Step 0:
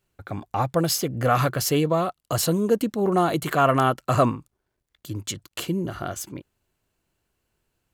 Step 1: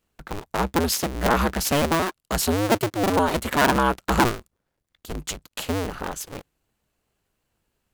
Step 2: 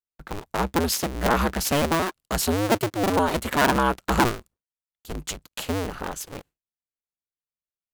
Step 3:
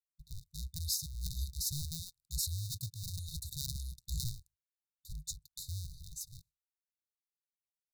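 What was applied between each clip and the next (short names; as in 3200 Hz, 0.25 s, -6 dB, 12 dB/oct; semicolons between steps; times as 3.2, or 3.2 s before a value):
cycle switcher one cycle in 2, inverted
expander -43 dBFS; gain -1 dB
brick-wall FIR band-stop 160–3600 Hz; gain -8 dB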